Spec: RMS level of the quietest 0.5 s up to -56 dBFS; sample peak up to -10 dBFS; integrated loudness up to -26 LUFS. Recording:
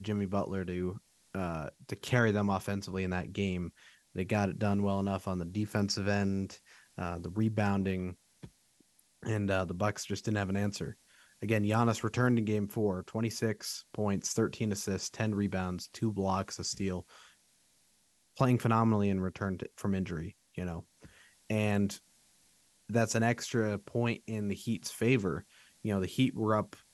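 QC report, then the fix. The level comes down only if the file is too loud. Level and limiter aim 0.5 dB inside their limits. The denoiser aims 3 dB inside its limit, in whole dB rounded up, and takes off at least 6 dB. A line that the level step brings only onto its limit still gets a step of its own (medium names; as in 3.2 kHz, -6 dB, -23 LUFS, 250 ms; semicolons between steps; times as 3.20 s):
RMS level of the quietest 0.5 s -70 dBFS: pass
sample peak -11.5 dBFS: pass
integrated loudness -33.0 LUFS: pass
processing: none needed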